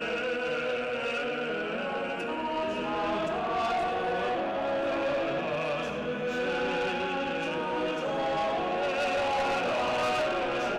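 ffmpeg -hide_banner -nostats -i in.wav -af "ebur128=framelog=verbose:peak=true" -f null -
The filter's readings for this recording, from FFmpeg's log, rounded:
Integrated loudness:
  I:         -29.7 LUFS
  Threshold: -39.7 LUFS
Loudness range:
  LRA:         2.1 LU
  Threshold: -49.9 LUFS
  LRA low:   -30.8 LUFS
  LRA high:  -28.7 LUFS
True peak:
  Peak:      -24.9 dBFS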